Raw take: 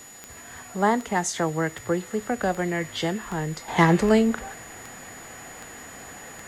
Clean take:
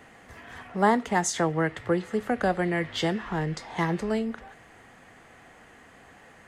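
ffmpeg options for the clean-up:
-af "adeclick=t=4,bandreject=f=6900:w=30,afwtdn=0.0032,asetnsamples=n=441:p=0,asendcmd='3.68 volume volume -9dB',volume=1"

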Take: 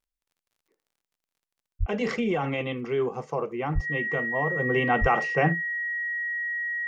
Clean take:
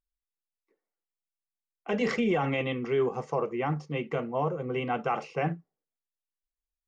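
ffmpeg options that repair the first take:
-filter_complex "[0:a]adeclick=t=4,bandreject=f=1900:w=30,asplit=3[s0][s1][s2];[s0]afade=t=out:st=1.79:d=0.02[s3];[s1]highpass=f=140:w=0.5412,highpass=f=140:w=1.3066,afade=t=in:st=1.79:d=0.02,afade=t=out:st=1.91:d=0.02[s4];[s2]afade=t=in:st=1.91:d=0.02[s5];[s3][s4][s5]amix=inputs=3:normalize=0,asplit=3[s6][s7][s8];[s6]afade=t=out:st=3.74:d=0.02[s9];[s7]highpass=f=140:w=0.5412,highpass=f=140:w=1.3066,afade=t=in:st=3.74:d=0.02,afade=t=out:st=3.86:d=0.02[s10];[s8]afade=t=in:st=3.86:d=0.02[s11];[s9][s10][s11]amix=inputs=3:normalize=0,asplit=3[s12][s13][s14];[s12]afade=t=out:st=5:d=0.02[s15];[s13]highpass=f=140:w=0.5412,highpass=f=140:w=1.3066,afade=t=in:st=5:d=0.02,afade=t=out:st=5.12:d=0.02[s16];[s14]afade=t=in:st=5.12:d=0.02[s17];[s15][s16][s17]amix=inputs=3:normalize=0,asetnsamples=n=441:p=0,asendcmd='4.56 volume volume -6dB',volume=1"

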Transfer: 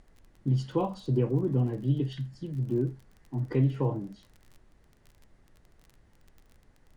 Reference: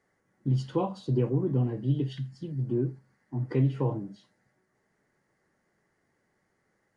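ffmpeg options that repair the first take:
-af "adeclick=t=4,agate=range=0.0891:threshold=0.00224"

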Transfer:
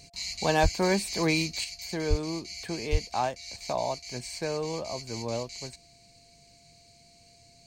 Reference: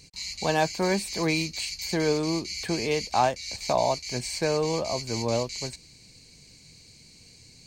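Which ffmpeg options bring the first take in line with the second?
-filter_complex "[0:a]bandreject=f=690:w=30,asplit=3[s0][s1][s2];[s0]afade=t=out:st=0.62:d=0.02[s3];[s1]highpass=f=140:w=0.5412,highpass=f=140:w=1.3066,afade=t=in:st=0.62:d=0.02,afade=t=out:st=0.74:d=0.02[s4];[s2]afade=t=in:st=0.74:d=0.02[s5];[s3][s4][s5]amix=inputs=3:normalize=0,asplit=3[s6][s7][s8];[s6]afade=t=out:st=2.09:d=0.02[s9];[s7]highpass=f=140:w=0.5412,highpass=f=140:w=1.3066,afade=t=in:st=2.09:d=0.02,afade=t=out:st=2.21:d=0.02[s10];[s8]afade=t=in:st=2.21:d=0.02[s11];[s9][s10][s11]amix=inputs=3:normalize=0,asplit=3[s12][s13][s14];[s12]afade=t=out:st=2.91:d=0.02[s15];[s13]highpass=f=140:w=0.5412,highpass=f=140:w=1.3066,afade=t=in:st=2.91:d=0.02,afade=t=out:st=3.03:d=0.02[s16];[s14]afade=t=in:st=3.03:d=0.02[s17];[s15][s16][s17]amix=inputs=3:normalize=0,asetnsamples=n=441:p=0,asendcmd='1.64 volume volume 6dB',volume=1"

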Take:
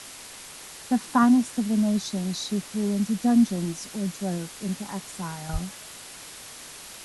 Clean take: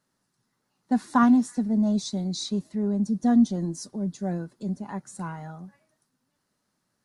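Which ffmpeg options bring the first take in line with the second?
-filter_complex "[0:a]asplit=3[s0][s1][s2];[s0]afade=t=out:st=5.52:d=0.02[s3];[s1]highpass=f=140:w=0.5412,highpass=f=140:w=1.3066,afade=t=in:st=5.52:d=0.02,afade=t=out:st=5.64:d=0.02[s4];[s2]afade=t=in:st=5.64:d=0.02[s5];[s3][s4][s5]amix=inputs=3:normalize=0,afwtdn=0.01,asetnsamples=n=441:p=0,asendcmd='5.49 volume volume -7.5dB',volume=1"

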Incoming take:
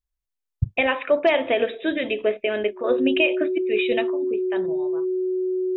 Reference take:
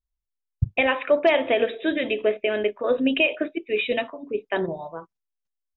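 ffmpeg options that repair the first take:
-af "bandreject=f=370:w=30,asetnsamples=n=441:p=0,asendcmd='4.34 volume volume 7dB',volume=1"

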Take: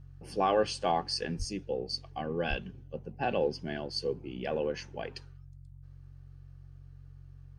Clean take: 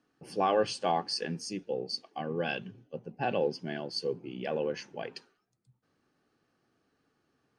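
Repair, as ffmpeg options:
-filter_complex "[0:a]bandreject=f=45.6:t=h:w=4,bandreject=f=91.2:t=h:w=4,bandreject=f=136.8:t=h:w=4,asplit=3[s0][s1][s2];[s0]afade=t=out:st=1.38:d=0.02[s3];[s1]highpass=f=140:w=0.5412,highpass=f=140:w=1.3066,afade=t=in:st=1.38:d=0.02,afade=t=out:st=1.5:d=0.02[s4];[s2]afade=t=in:st=1.5:d=0.02[s5];[s3][s4][s5]amix=inputs=3:normalize=0,asplit=3[s6][s7][s8];[s6]afade=t=out:st=2.49:d=0.02[s9];[s7]highpass=f=140:w=0.5412,highpass=f=140:w=1.3066,afade=t=in:st=2.49:d=0.02,afade=t=out:st=2.61:d=0.02[s10];[s8]afade=t=in:st=2.61:d=0.02[s11];[s9][s10][s11]amix=inputs=3:normalize=0"

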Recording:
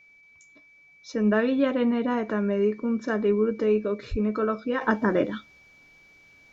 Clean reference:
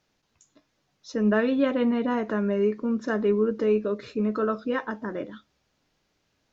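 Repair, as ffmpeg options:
-filter_complex "[0:a]bandreject=f=2300:w=30,asplit=3[s0][s1][s2];[s0]afade=t=out:st=4.1:d=0.02[s3];[s1]highpass=f=140:w=0.5412,highpass=f=140:w=1.3066,afade=t=in:st=4.1:d=0.02,afade=t=out:st=4.22:d=0.02[s4];[s2]afade=t=in:st=4.22:d=0.02[s5];[s3][s4][s5]amix=inputs=3:normalize=0,asetnsamples=n=441:p=0,asendcmd='4.81 volume volume -9.5dB',volume=1"

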